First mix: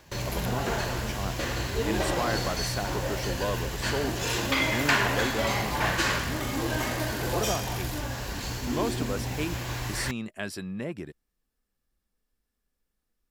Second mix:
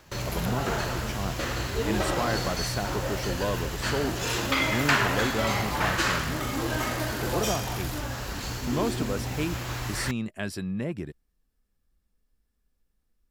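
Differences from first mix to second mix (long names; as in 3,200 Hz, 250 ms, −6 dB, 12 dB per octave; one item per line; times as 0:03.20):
speech: add low-shelf EQ 190 Hz +8.5 dB
first sound: remove notch filter 1,300 Hz, Q 8.6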